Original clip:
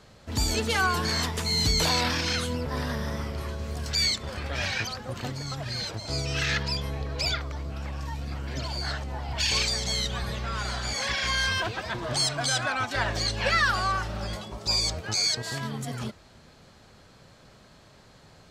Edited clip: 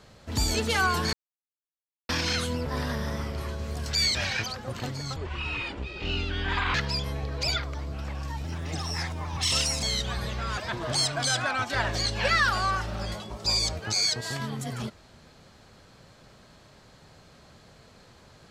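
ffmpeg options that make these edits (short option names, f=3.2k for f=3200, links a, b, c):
-filter_complex "[0:a]asplit=9[a][b][c][d][e][f][g][h][i];[a]atrim=end=1.13,asetpts=PTS-STARTPTS,afade=t=out:st=1.126:d=0.004:c=hsin[j];[b]atrim=start=1.13:end=2.09,asetpts=PTS-STARTPTS,volume=0[k];[c]atrim=start=2.09:end=4.152,asetpts=PTS-STARTPTS,afade=t=in:d=0.004:c=hsin[l];[d]atrim=start=4.558:end=5.574[m];[e]atrim=start=5.57:end=6.52,asetpts=PTS-STARTPTS,asetrate=26460,aresample=44100[n];[f]atrim=start=6.516:end=8.224[o];[g]atrim=start=8.22:end=9.88,asetpts=PTS-STARTPTS,asetrate=52920,aresample=44100[p];[h]atrim=start=9.876:end=10.632[q];[i]atrim=start=11.788[r];[j][k][l]concat=n=3:v=0:a=1[s];[s][m]acrossfade=d=0.004:c1=hsin:c2=hsin[t];[t][n]acrossfade=d=0.004:c1=hsin:c2=hsin[u];[u][o]acrossfade=d=0.004:c1=hsin:c2=hsin[v];[v][p]acrossfade=d=0.004:c1=hsin:c2=hsin[w];[w][q]acrossfade=d=0.004:c1=hsin:c2=hsin[x];[x][r]acrossfade=d=0.004:c1=hsin:c2=hsin"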